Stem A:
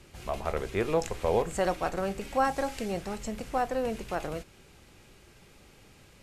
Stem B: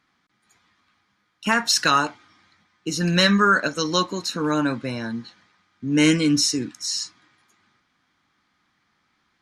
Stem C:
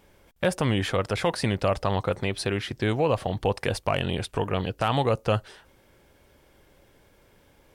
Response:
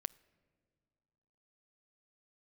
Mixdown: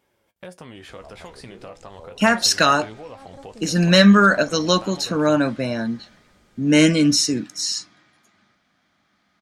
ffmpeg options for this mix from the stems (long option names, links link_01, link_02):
-filter_complex "[0:a]acompressor=threshold=-33dB:ratio=4,lowpass=frequency=9400:width=0.5412,lowpass=frequency=9400:width=1.3066,equalizer=frequency=2000:width=1.1:gain=-13.5,adelay=750,volume=-3.5dB[link_01];[1:a]equalizer=frequency=200:width_type=o:width=0.33:gain=6,equalizer=frequency=630:width_type=o:width=0.33:gain=11,equalizer=frequency=1000:width_type=o:width=0.33:gain=-4,adelay=750,volume=0.5dB,asplit=2[link_02][link_03];[link_03]volume=-11.5dB[link_04];[2:a]highpass=frequency=160:poles=1,acompressor=threshold=-29dB:ratio=3,flanger=delay=7.6:depth=9.2:regen=49:speed=0.37:shape=triangular,volume=-7.5dB,asplit=3[link_05][link_06][link_07];[link_06]volume=-5dB[link_08];[link_07]apad=whole_len=307474[link_09];[link_01][link_09]sidechaincompress=threshold=-49dB:ratio=8:attack=26:release=101[link_10];[3:a]atrim=start_sample=2205[link_11];[link_04][link_08]amix=inputs=2:normalize=0[link_12];[link_12][link_11]afir=irnorm=-1:irlink=0[link_13];[link_10][link_02][link_05][link_13]amix=inputs=4:normalize=0"